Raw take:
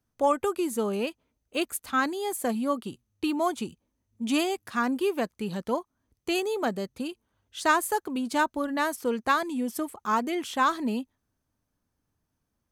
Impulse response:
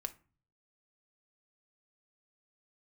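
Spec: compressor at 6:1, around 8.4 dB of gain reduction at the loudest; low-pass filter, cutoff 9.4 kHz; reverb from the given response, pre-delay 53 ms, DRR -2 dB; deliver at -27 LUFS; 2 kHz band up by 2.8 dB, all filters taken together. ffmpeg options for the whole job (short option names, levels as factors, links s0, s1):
-filter_complex "[0:a]lowpass=9400,equalizer=f=2000:t=o:g=4,acompressor=threshold=0.0562:ratio=6,asplit=2[s0][s1];[1:a]atrim=start_sample=2205,adelay=53[s2];[s1][s2]afir=irnorm=-1:irlink=0,volume=1.5[s3];[s0][s3]amix=inputs=2:normalize=0,volume=1.06"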